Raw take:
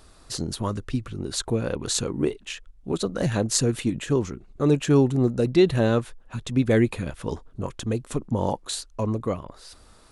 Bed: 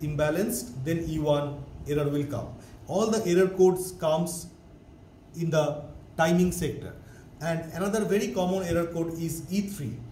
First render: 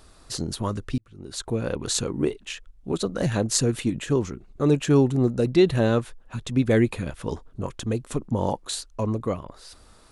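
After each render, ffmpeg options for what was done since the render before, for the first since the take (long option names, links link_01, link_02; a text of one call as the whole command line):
ffmpeg -i in.wav -filter_complex "[0:a]asplit=2[link_01][link_02];[link_01]atrim=end=0.98,asetpts=PTS-STARTPTS,afade=type=out:start_time=0.976:duration=0.004:curve=hsin[link_03];[link_02]atrim=start=0.98,asetpts=PTS-STARTPTS,afade=type=in:duration=0.7[link_04];[link_03][link_04]concat=n=2:v=0:a=1" out.wav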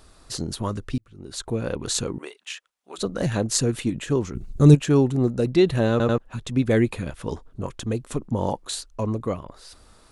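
ffmpeg -i in.wav -filter_complex "[0:a]asettb=1/sr,asplit=3[link_01][link_02][link_03];[link_01]atrim=end=2.184[link_04];[link_02]atrim=start=2.18:end=2.98,asetpts=PTS-STARTPTS,afade=type=in:duration=0.004:curve=qsin,afade=type=out:start_time=0.796:duration=0.004:curve=qsin,highpass=910[link_05];[link_03]atrim=start=2.976[link_06];[link_04][link_05]acrossfade=duration=0.004:curve1=hsin:curve2=qsin[link_07];[link_07][link_06]acrossfade=duration=0.004:curve1=qsin:curve2=hsin,asplit=3[link_08][link_09][link_10];[link_08]afade=type=out:start_time=4.34:duration=0.02[link_11];[link_09]bass=frequency=250:gain=14,treble=frequency=4000:gain=13,afade=type=in:start_time=4.34:duration=0.02,afade=type=out:start_time=4.74:duration=0.02[link_12];[link_10]afade=type=in:start_time=4.74:duration=0.02[link_13];[link_11][link_12][link_13]amix=inputs=3:normalize=0,asplit=4[link_14][link_15][link_16][link_17];[link_14]atrim=end=6.002[link_18];[link_15]atrim=start=5.908:end=6.002[link_19];[link_16]atrim=start=5.908:end=6.002[link_20];[link_17]atrim=start=6.178[link_21];[link_18][link_19]acrossfade=duration=0.004:curve1=hsin:curve2=hsin[link_22];[link_22][link_20]acrossfade=duration=0.004:curve1=hsin:curve2=hsin[link_23];[link_23][link_21]acrossfade=duration=0.004:curve1=hsin:curve2=hsin" out.wav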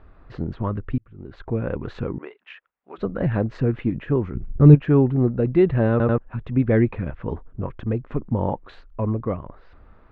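ffmpeg -i in.wav -af "lowpass=frequency=2200:width=0.5412,lowpass=frequency=2200:width=1.3066,lowshelf=frequency=150:gain=5.5" out.wav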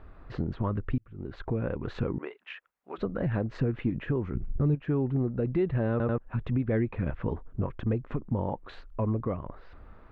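ffmpeg -i in.wav -af "acompressor=threshold=-23dB:ratio=2,alimiter=limit=-18.5dB:level=0:latency=1:release=291" out.wav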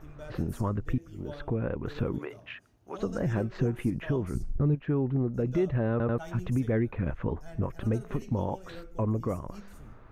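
ffmpeg -i in.wav -i bed.wav -filter_complex "[1:a]volume=-19.5dB[link_01];[0:a][link_01]amix=inputs=2:normalize=0" out.wav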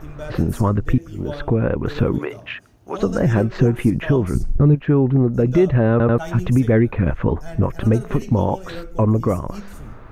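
ffmpeg -i in.wav -af "volume=12dB" out.wav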